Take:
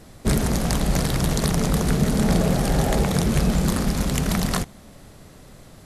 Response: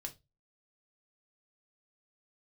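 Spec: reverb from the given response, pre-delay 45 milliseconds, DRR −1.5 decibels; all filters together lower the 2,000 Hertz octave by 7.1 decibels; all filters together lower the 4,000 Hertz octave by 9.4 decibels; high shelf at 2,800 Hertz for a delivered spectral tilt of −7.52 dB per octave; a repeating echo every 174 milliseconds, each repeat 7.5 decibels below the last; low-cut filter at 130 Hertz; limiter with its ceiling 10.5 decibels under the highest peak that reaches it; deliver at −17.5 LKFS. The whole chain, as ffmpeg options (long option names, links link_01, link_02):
-filter_complex "[0:a]highpass=130,equalizer=frequency=2000:width_type=o:gain=-6,highshelf=frequency=2800:gain=-4.5,equalizer=frequency=4000:width_type=o:gain=-6.5,alimiter=limit=-20dB:level=0:latency=1,aecho=1:1:174|348|522|696|870:0.422|0.177|0.0744|0.0312|0.0131,asplit=2[link_01][link_02];[1:a]atrim=start_sample=2205,adelay=45[link_03];[link_02][link_03]afir=irnorm=-1:irlink=0,volume=4.5dB[link_04];[link_01][link_04]amix=inputs=2:normalize=0,volume=6.5dB"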